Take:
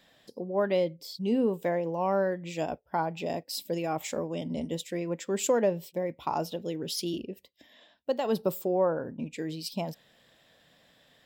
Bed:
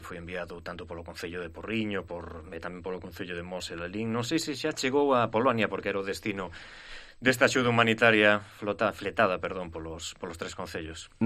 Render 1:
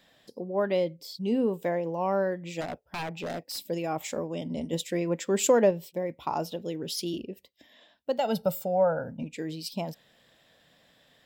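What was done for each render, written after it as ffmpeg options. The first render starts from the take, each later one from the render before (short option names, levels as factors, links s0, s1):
-filter_complex "[0:a]asplit=3[s0][s1][s2];[s0]afade=t=out:st=2.6:d=0.02[s3];[s1]aeval=exprs='0.0376*(abs(mod(val(0)/0.0376+3,4)-2)-1)':c=same,afade=t=in:st=2.6:d=0.02,afade=t=out:st=3.58:d=0.02[s4];[s2]afade=t=in:st=3.58:d=0.02[s5];[s3][s4][s5]amix=inputs=3:normalize=0,asettb=1/sr,asplit=3[s6][s7][s8];[s6]atrim=end=8.184[s9];[s7]atrim=start=8.18:end=9.23,asetpts=PTS-STARTPTS,afade=t=in:d=0.004:c=qsin,afade=t=out:st=1.046:d=0.004:c=qsin,aecho=1:1:1.4:0.85,atrim=end_sample=46305[s10];[s8]atrim=start=9.226[s11];[s9][s10]acrossfade=d=0.004:c1=hsin:c2=qsin[s12];[s12][s11]acrossfade=d=0.004:c1=qsin:c2=hsin,asplit=3[s13][s14][s15];[s13]atrim=end=4.732[s16];[s14]atrim=start=4.728:end=5.712,asetpts=PTS-STARTPTS,volume=1.58[s17];[s15]atrim=start=5.708[s18];[s16][s17]acrossfade=d=0.004:c1=hsin:c2=hsin[s19];[s19][s18]acrossfade=d=0.004:c1=hsin:c2=hsin"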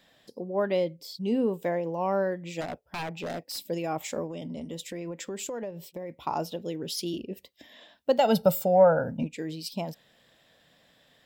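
-filter_complex "[0:a]asettb=1/sr,asplit=3[s0][s1][s2];[s0]atrim=end=4.294[s3];[s1]atrim=start=4.29:end=6.13,asetpts=PTS-STARTPTS,afade=t=in:d=0.004:c=qsin,afade=t=out:st=1.836:d=0.004:c=qsin,acompressor=threshold=0.0224:ratio=6:attack=3.2:release=140:knee=1:detection=peak[s4];[s2]atrim=start=6.126[s5];[s3][s4]acrossfade=d=0.004:c1=hsin:c2=qsin[s6];[s6][s5]acrossfade=d=0.004:c1=qsin:c2=hsin,asplit=3[s7][s8][s9];[s7]afade=t=out:st=7.3:d=0.02[s10];[s8]acontrast=36,afade=t=in:st=7.3:d=0.02,afade=t=out:st=9.26:d=0.02[s11];[s9]afade=t=in:st=9.26:d=0.02[s12];[s10][s11][s12]amix=inputs=3:normalize=0"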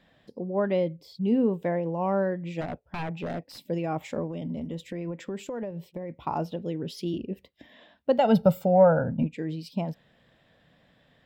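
-af "bass=f=250:g=7,treble=f=4000:g=-14"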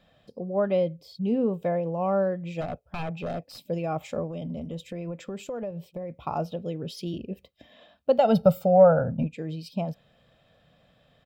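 -af "bandreject=f=1900:w=5.8,aecho=1:1:1.6:0.4"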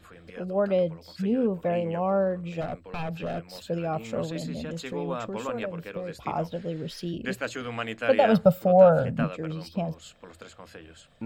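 -filter_complex "[1:a]volume=0.335[s0];[0:a][s0]amix=inputs=2:normalize=0"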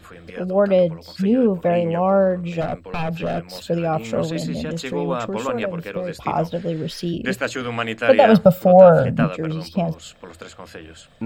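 -af "volume=2.51,alimiter=limit=0.891:level=0:latency=1"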